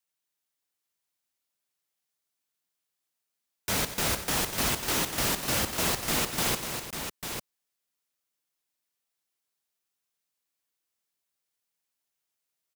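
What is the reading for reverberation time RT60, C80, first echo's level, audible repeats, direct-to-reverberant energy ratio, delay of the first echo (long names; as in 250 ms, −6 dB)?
no reverb audible, no reverb audible, −11.5 dB, 5, no reverb audible, 90 ms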